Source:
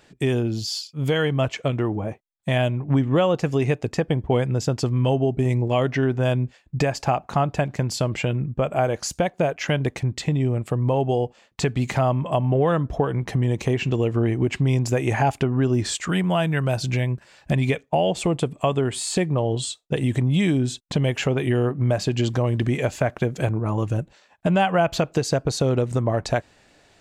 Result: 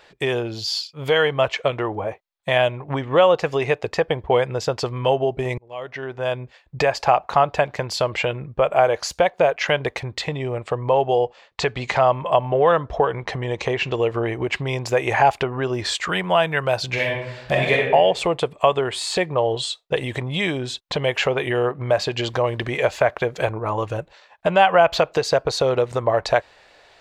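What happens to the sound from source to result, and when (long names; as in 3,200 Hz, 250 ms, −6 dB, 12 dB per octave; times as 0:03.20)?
0:05.58–0:06.79: fade in
0:10.64–0:13.96: low-pass filter 8,300 Hz 24 dB per octave
0:16.93–0:17.87: thrown reverb, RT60 0.88 s, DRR −2.5 dB
whole clip: graphic EQ with 10 bands 125 Hz −5 dB, 250 Hz −9 dB, 500 Hz +7 dB, 1,000 Hz +7 dB, 2,000 Hz +5 dB, 4,000 Hz +7 dB, 8,000 Hz −4 dB; level −1 dB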